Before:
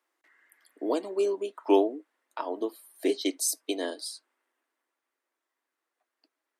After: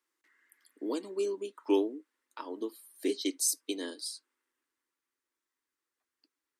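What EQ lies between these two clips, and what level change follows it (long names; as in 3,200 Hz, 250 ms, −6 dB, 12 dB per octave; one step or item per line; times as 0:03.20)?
bass and treble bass +6 dB, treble +13 dB
parametric band 680 Hz −14 dB 0.5 octaves
high-shelf EQ 5,300 Hz −11.5 dB
−4.5 dB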